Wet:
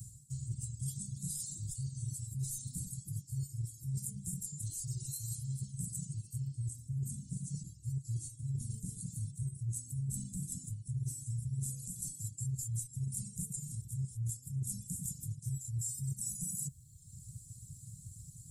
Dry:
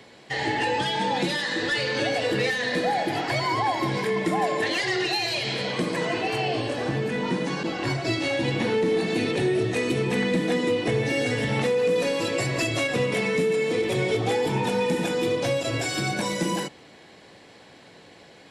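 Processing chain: Chebyshev band-stop 130–7600 Hz, order 4; reverb removal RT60 0.92 s; reverse; compression 5:1, threshold -55 dBFS, peak gain reduction 23.5 dB; reverse; trim +17 dB

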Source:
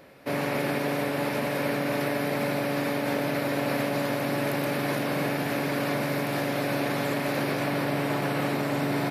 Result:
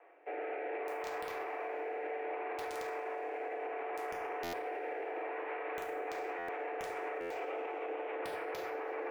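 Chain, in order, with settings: 7.28–8.16 s: comb filter that takes the minimum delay 0.35 ms; rotary cabinet horn 0.65 Hz, later 7 Hz, at 5.64 s; mistuned SSB +160 Hz 180–2300 Hz; integer overflow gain 19 dB; two-slope reverb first 0.51 s, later 3.1 s, from -22 dB, DRR 2 dB; peak limiter -25 dBFS, peak gain reduction 9.5 dB; buffer glitch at 4.43/6.38/7.20 s, samples 512, times 8; trim -6.5 dB

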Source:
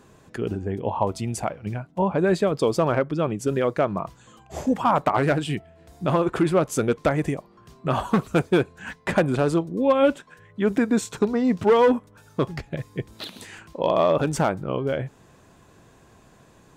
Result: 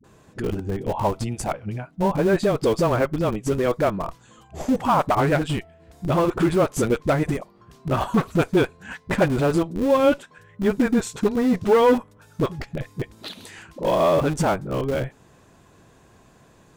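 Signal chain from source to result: phase dispersion highs, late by 42 ms, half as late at 350 Hz; in parallel at -9 dB: Schmitt trigger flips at -22 dBFS

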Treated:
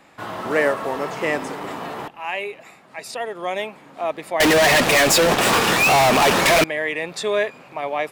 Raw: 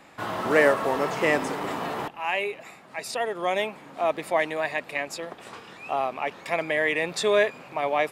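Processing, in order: 4.40–6.64 s: fuzz box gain 49 dB, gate -50 dBFS

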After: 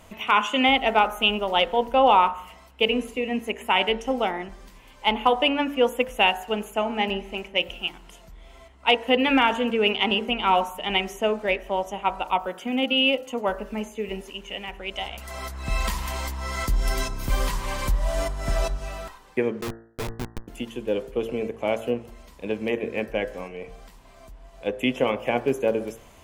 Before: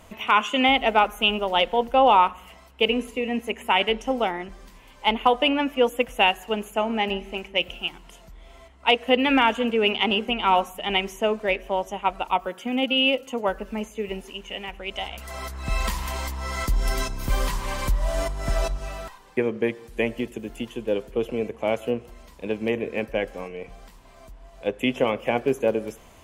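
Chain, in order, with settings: 19.61–20.48 s: Schmitt trigger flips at -22.5 dBFS; de-hum 56.93 Hz, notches 34

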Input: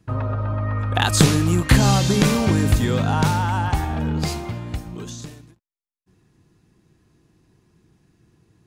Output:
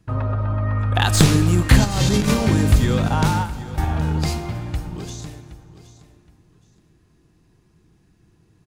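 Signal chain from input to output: tracing distortion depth 0.025 ms; de-hum 46.94 Hz, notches 12; 3.08–3.78 s: gate with hold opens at -11 dBFS; bass shelf 61 Hz +8.5 dB; 1.84–2.34 s: compressor with a negative ratio -18 dBFS, ratio -0.5; feedback delay 770 ms, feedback 25%, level -16 dB; plate-style reverb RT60 3.1 s, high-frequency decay 0.6×, DRR 14 dB

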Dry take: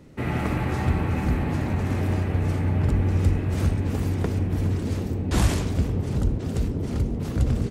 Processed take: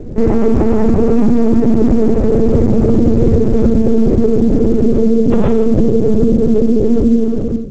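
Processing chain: fade out at the end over 0.87 s; 3.12–3.67 s: short-mantissa float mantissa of 4-bit; two resonant band-passes 320 Hz, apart 0.91 oct; hum 60 Hz, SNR 24 dB; LPC vocoder at 8 kHz pitch kept; on a send at -7.5 dB: reverberation RT60 0.45 s, pre-delay 3 ms; on the sum: loudness maximiser +30.5 dB; trim -1 dB; A-law 128 kbps 16 kHz

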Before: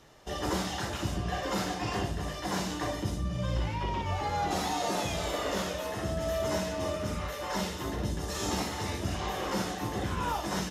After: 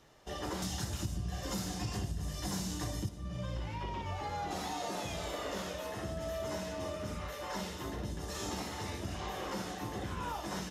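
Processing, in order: 0.62–3.09 s: tone controls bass +13 dB, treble +13 dB; compression 5:1, threshold -29 dBFS, peak gain reduction 13 dB; trim -5 dB

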